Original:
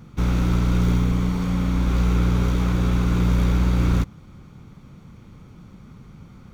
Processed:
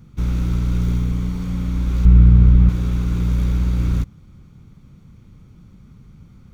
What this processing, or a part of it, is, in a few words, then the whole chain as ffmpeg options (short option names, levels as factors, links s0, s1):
smiley-face EQ: -filter_complex "[0:a]lowshelf=f=170:g=8.5,equalizer=f=810:t=o:w=1.6:g=-3.5,highshelf=f=5300:g=4,asettb=1/sr,asplit=3[s0][s1][s2];[s0]atrim=end=2.054[s3];[s1]atrim=start=2.05:end=2.69,asetpts=PTS-STARTPTS,afade=t=in:d=0.004:c=qsin,afade=t=out:st=0.636:d=0.004:c=qsin,bass=f=250:g=10,treble=f=4000:g=-13[s4];[s2]atrim=start=2.686[s5];[s3][s4]acrossfade=d=0.004:c1=hsin:c2=qsin[s6];[s6][s5]acrossfade=d=0.004:c1=qsin:c2=hsin,volume=0.501"